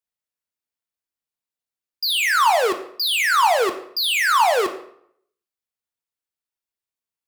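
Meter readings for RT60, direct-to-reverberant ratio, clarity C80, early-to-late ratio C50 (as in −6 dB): 0.70 s, 6.0 dB, 14.5 dB, 12.0 dB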